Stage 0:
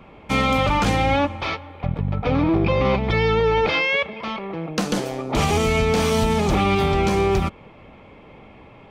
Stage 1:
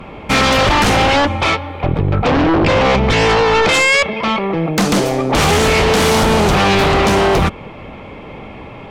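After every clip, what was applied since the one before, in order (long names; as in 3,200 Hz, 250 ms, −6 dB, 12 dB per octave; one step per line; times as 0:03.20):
sine wavefolder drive 9 dB, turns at −9 dBFS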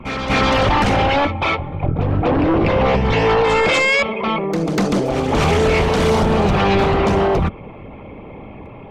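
spectral envelope exaggerated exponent 1.5
backwards echo 244 ms −8 dB
level −3.5 dB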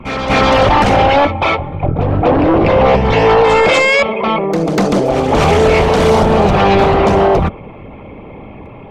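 dynamic equaliser 650 Hz, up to +5 dB, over −31 dBFS, Q 1.1
level +3 dB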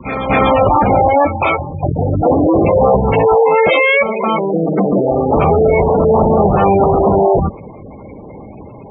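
high-pass filter 56 Hz 6 dB per octave
gate on every frequency bin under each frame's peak −15 dB strong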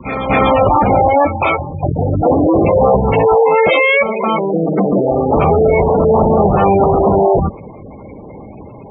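notch filter 1,600 Hz, Q 26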